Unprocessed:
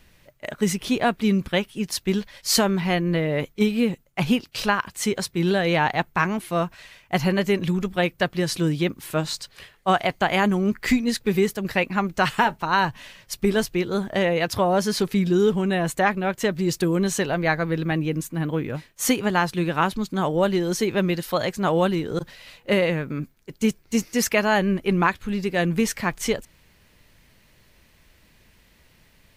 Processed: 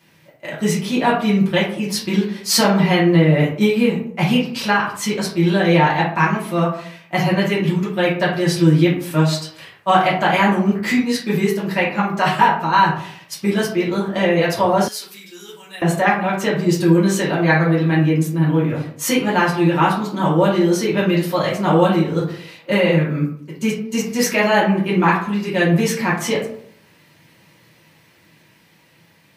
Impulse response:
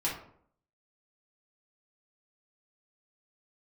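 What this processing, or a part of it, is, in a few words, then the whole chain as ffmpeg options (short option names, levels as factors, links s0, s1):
far laptop microphone: -filter_complex "[1:a]atrim=start_sample=2205[s0];[0:a][s0]afir=irnorm=-1:irlink=0,highpass=f=110:w=0.5412,highpass=f=110:w=1.3066,dynaudnorm=f=380:g=11:m=3.76,asettb=1/sr,asplit=3[s1][s2][s3];[s1]atrim=end=14.884[s4];[s2]atrim=start=14.88:end=15.82,asetpts=PTS-STARTPTS,afade=t=in:d=0.004:c=qsin,afade=t=out:st=0.936:d=0.004:c=qsin,aderivative[s5];[s3]atrim=start=15.816[s6];[s4][s5]acrossfade=d=0.004:c1=hsin:c2=qsin[s7];[s7][s6]acrossfade=d=0.004:c1=qsin:c2=hsin,volume=0.891"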